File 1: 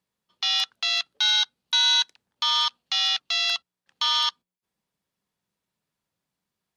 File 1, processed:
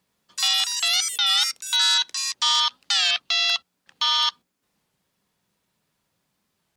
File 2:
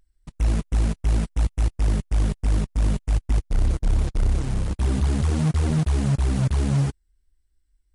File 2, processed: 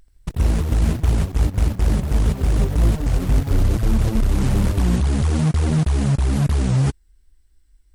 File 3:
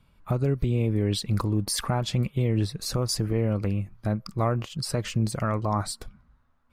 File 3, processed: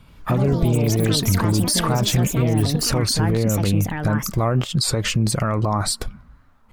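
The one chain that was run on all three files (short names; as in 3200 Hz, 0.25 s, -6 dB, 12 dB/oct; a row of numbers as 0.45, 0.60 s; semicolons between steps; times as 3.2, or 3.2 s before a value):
limiter -23 dBFS; echoes that change speed 82 ms, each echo +6 st, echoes 3, each echo -6 dB; record warp 33 1/3 rpm, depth 160 cents; match loudness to -20 LUFS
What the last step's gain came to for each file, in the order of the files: +10.0, +11.0, +12.5 dB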